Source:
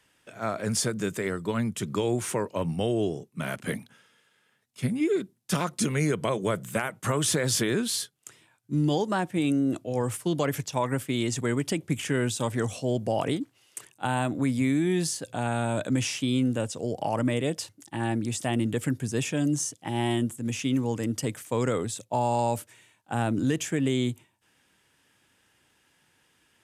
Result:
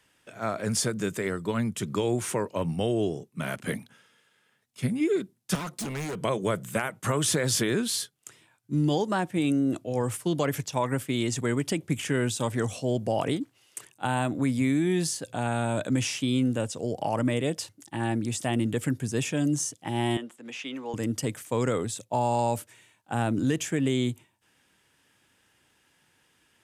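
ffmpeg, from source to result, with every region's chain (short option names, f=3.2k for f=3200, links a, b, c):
-filter_complex "[0:a]asettb=1/sr,asplit=3[a][b][c];[a]atrim=end=5.554[d];[b]atrim=start=5.55:end=6.21,asetpts=PTS-STARTPTS,afade=t=in:d=0.004:c=qsin,afade=t=out:st=0.656:d=0.004:c=qsin,highpass=120,asoftclip=type=hard:threshold=-31dB[e];[c]atrim=start=6.206[f];[d][e]acrossfade=d=0.004:c1=hsin:c2=qsin[g];[g][f]acrossfade=d=0.004:c1=qsin:c2=hsin,asettb=1/sr,asplit=3[h][i][j];[h]atrim=end=20.174[k];[i]atrim=start=20.17:end=20.94,asetpts=PTS-STARTPTS,afade=t=in:d=0.004:c=qsin,afade=t=out:st=0.766:d=0.004:c=qsin,highpass=f=180:w=0.5412,highpass=f=180:w=1.3066,acrossover=split=470 4500:gain=0.2 1 0.141[l][m][n];[l][m][n]amix=inputs=3:normalize=0[o];[j]atrim=start=20.936[p];[k][o]acrossfade=d=0.004:c1=hsin:c2=qsin[q];[q][p]acrossfade=d=0.004:c1=qsin:c2=hsin"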